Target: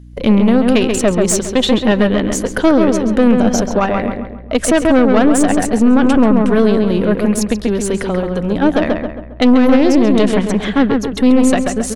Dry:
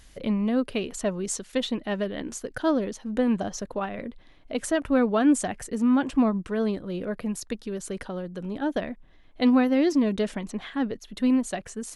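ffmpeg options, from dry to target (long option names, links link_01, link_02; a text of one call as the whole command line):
ffmpeg -i in.wav -filter_complex "[0:a]agate=range=-25dB:threshold=-41dB:ratio=16:detection=peak,aeval=exprs='(tanh(7.08*val(0)+0.65)-tanh(0.65))/7.08':channel_layout=same,aeval=exprs='val(0)+0.002*(sin(2*PI*60*n/s)+sin(2*PI*2*60*n/s)/2+sin(2*PI*3*60*n/s)/3+sin(2*PI*4*60*n/s)/4+sin(2*PI*5*60*n/s)/5)':channel_layout=same,acontrast=82,asplit=2[link_01][link_02];[link_02]adelay=135,lowpass=frequency=2700:poles=1,volume=-4.5dB,asplit=2[link_03][link_04];[link_04]adelay=135,lowpass=frequency=2700:poles=1,volume=0.45,asplit=2[link_05][link_06];[link_06]adelay=135,lowpass=frequency=2700:poles=1,volume=0.45,asplit=2[link_07][link_08];[link_08]adelay=135,lowpass=frequency=2700:poles=1,volume=0.45,asplit=2[link_09][link_10];[link_10]adelay=135,lowpass=frequency=2700:poles=1,volume=0.45,asplit=2[link_11][link_12];[link_12]adelay=135,lowpass=frequency=2700:poles=1,volume=0.45[link_13];[link_03][link_05][link_07][link_09][link_11][link_13]amix=inputs=6:normalize=0[link_14];[link_01][link_14]amix=inputs=2:normalize=0,alimiter=level_in=12dB:limit=-1dB:release=50:level=0:latency=1,volume=-1dB" out.wav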